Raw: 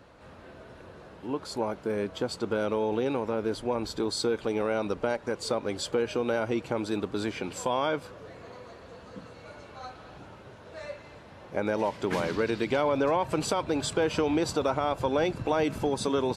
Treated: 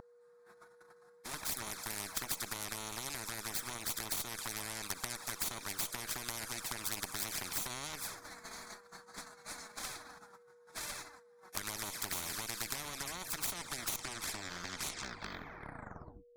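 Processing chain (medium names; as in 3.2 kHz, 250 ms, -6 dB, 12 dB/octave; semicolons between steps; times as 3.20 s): tape stop on the ending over 2.99 s; RIAA curve recording; gate -45 dBFS, range -39 dB; peaking EQ 1.5 kHz +4 dB 1.8 oct; compression 20:1, threshold -28 dBFS, peak gain reduction 10 dB; Chebyshev shaper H 3 -33 dB, 4 -6 dB, 7 -31 dB, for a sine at -14.5 dBFS; touch-sensitive flanger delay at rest 5.6 ms, full sweep at -28 dBFS; whistle 480 Hz -45 dBFS; static phaser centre 1.2 kHz, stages 4; spectrum-flattening compressor 4:1; trim +3.5 dB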